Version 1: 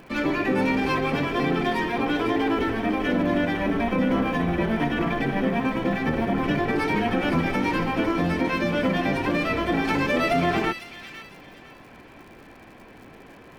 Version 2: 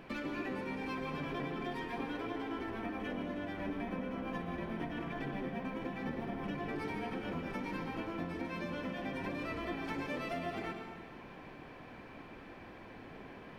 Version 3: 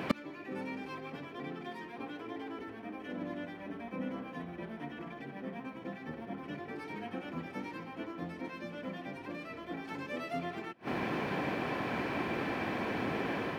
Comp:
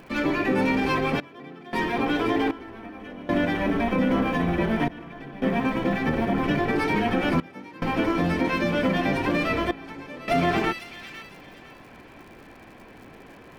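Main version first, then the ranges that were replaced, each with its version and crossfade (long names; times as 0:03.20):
1
0:01.20–0:01.73: punch in from 3
0:02.51–0:03.29: punch in from 2
0:04.88–0:05.42: punch in from 2
0:07.40–0:07.82: punch in from 3
0:09.71–0:10.28: punch in from 2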